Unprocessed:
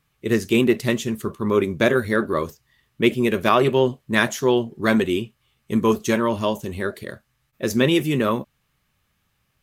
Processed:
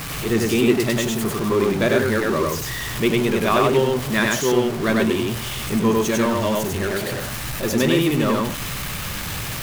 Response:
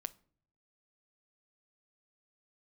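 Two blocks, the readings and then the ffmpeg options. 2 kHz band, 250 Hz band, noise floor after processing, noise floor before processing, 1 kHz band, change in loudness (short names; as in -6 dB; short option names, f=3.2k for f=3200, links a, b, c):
+1.5 dB, +1.0 dB, -29 dBFS, -70 dBFS, +1.5 dB, +0.5 dB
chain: -filter_complex "[0:a]aeval=exprs='val(0)+0.5*0.0944*sgn(val(0))':c=same,asplit=2[a][b];[1:a]atrim=start_sample=2205,adelay=98[c];[b][c]afir=irnorm=-1:irlink=0,volume=1.5dB[d];[a][d]amix=inputs=2:normalize=0,volume=-4dB"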